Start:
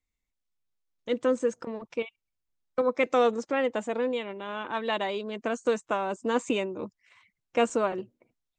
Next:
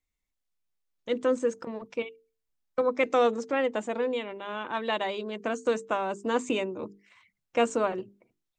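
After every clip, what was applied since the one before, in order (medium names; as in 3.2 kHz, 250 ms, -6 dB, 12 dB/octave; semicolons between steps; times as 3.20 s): hum notches 50/100/150/200/250/300/350/400/450 Hz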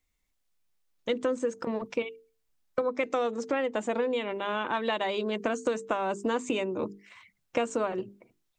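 compression 6:1, threshold -32 dBFS, peak gain reduction 13 dB; trim +6.5 dB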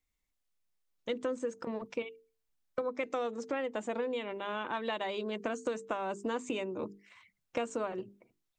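hard clipper -16 dBFS, distortion -41 dB; trim -6 dB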